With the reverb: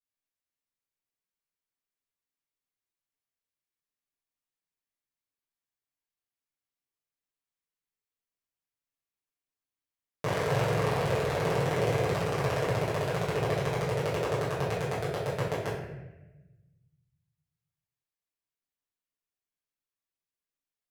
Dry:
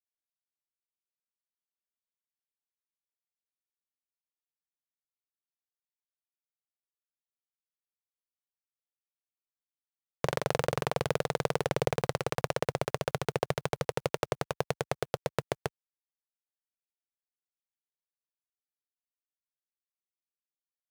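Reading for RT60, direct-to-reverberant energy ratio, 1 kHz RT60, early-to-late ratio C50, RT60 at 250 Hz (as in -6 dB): 1.0 s, -10.5 dB, 0.90 s, 1.5 dB, 1.6 s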